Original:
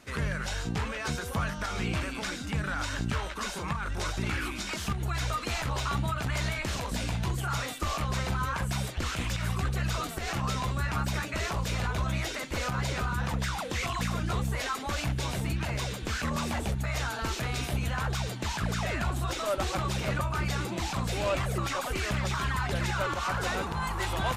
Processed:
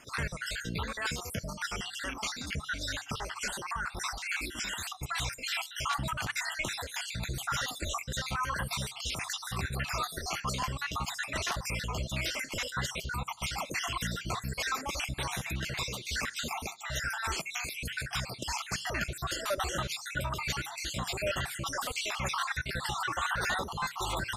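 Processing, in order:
time-frequency cells dropped at random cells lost 55%
tilt shelving filter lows −5 dB, about 800 Hz
on a send: convolution reverb RT60 0.40 s, pre-delay 3 ms, DRR 22 dB

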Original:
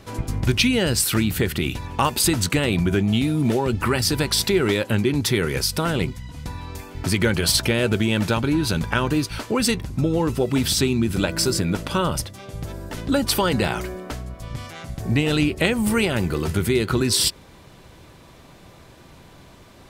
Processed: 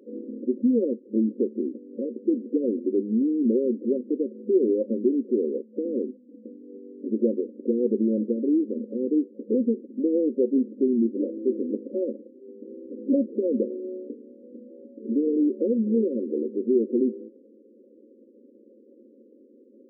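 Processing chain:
brick-wall band-pass 210–570 Hz

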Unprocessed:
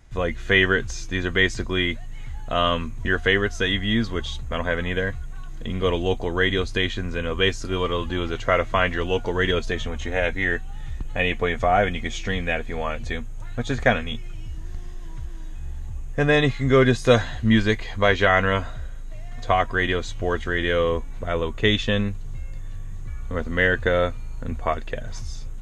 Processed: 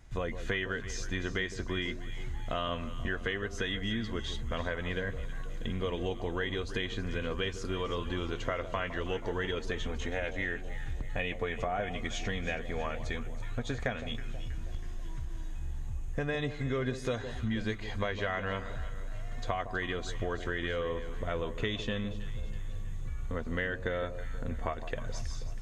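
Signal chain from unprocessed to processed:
downward compressor, threshold −27 dBFS, peak gain reduction 15.5 dB
delay that swaps between a low-pass and a high-pass 161 ms, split 960 Hz, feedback 70%, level −10.5 dB
level −3.5 dB

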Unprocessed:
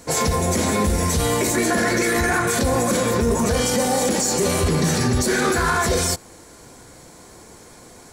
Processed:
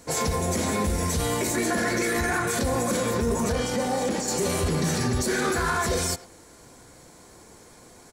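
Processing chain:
0:03.52–0:04.28: high-shelf EQ 6,300 Hz −10.5 dB
far-end echo of a speakerphone 100 ms, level −14 dB
level −5.5 dB

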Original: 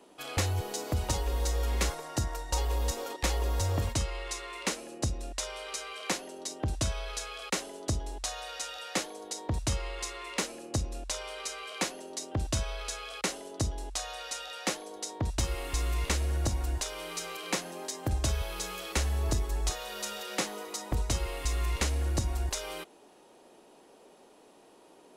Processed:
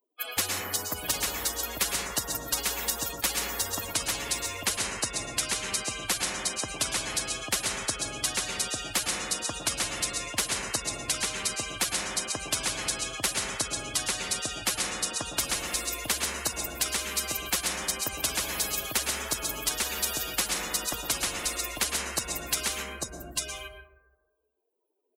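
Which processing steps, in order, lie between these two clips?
spectral dynamics exaggerated over time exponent 3
thirty-one-band graphic EQ 800 Hz −7 dB, 2,500 Hz +4 dB, 5,000 Hz −4 dB
in parallel at +2.5 dB: speech leveller 0.5 s
on the sum: single-tap delay 847 ms −12 dB
on a send at −11 dB: convolution reverb RT60 1.0 s, pre-delay 102 ms
on the sum: every bin compressed towards the loudest bin 10 to 1
level +2 dB

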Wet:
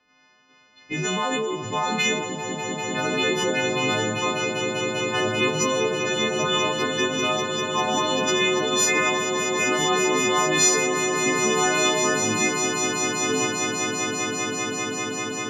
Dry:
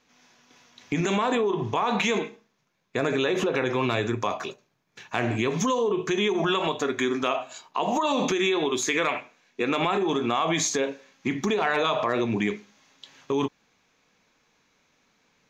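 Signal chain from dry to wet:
every partial snapped to a pitch grid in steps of 3 semitones
low-pass that shuts in the quiet parts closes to 2,500 Hz, open at −17.5 dBFS
echo that builds up and dies away 197 ms, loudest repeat 8, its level −8.5 dB
level −2 dB

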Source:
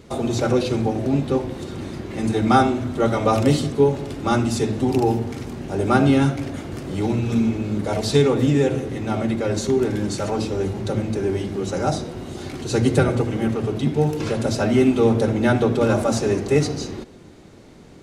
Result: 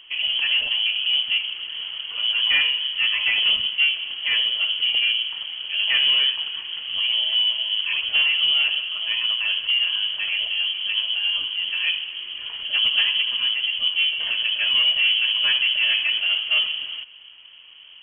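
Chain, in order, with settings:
in parallel at −5.5 dB: wave folding −16 dBFS
on the sum: high-frequency loss of the air 410 metres
voice inversion scrambler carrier 3,200 Hz
level −4 dB

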